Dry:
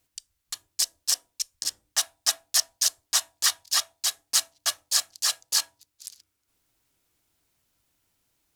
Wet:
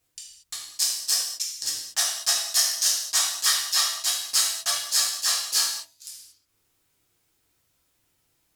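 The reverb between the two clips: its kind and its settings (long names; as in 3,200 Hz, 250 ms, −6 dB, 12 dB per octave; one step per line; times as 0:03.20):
reverb whose tail is shaped and stops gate 260 ms falling, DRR −5.5 dB
level −3.5 dB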